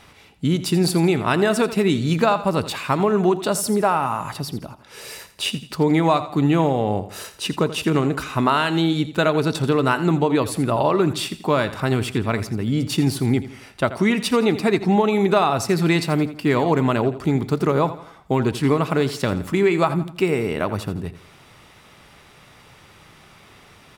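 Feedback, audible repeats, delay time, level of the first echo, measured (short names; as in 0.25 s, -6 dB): 41%, 3, 84 ms, -14.0 dB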